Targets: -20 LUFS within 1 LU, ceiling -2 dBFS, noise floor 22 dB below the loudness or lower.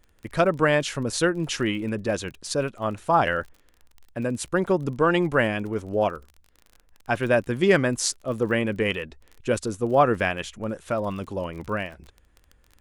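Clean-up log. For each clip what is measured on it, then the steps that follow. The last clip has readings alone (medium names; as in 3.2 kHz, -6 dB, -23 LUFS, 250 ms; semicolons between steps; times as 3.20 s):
tick rate 30 per s; loudness -25.0 LUFS; peak level -6.0 dBFS; loudness target -20.0 LUFS
-> de-click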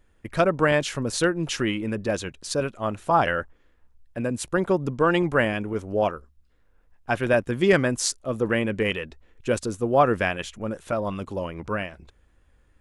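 tick rate 0 per s; loudness -25.0 LUFS; peak level -6.0 dBFS; loudness target -20.0 LUFS
-> trim +5 dB; peak limiter -2 dBFS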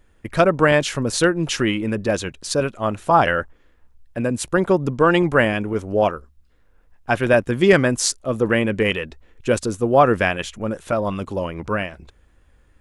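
loudness -20.0 LUFS; peak level -2.0 dBFS; noise floor -56 dBFS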